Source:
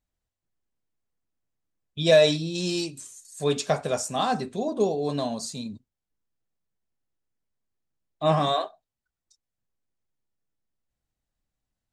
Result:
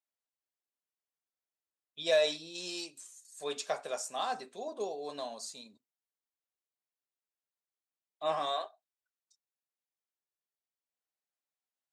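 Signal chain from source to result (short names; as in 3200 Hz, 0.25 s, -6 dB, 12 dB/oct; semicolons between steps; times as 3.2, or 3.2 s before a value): HPF 520 Hz 12 dB/oct; gain -8 dB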